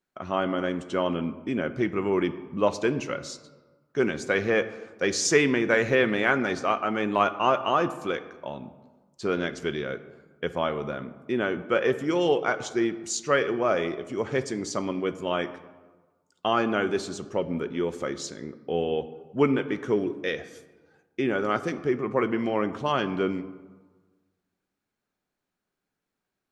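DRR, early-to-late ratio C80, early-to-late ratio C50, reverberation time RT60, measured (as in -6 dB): 11.5 dB, 15.5 dB, 14.0 dB, 1.3 s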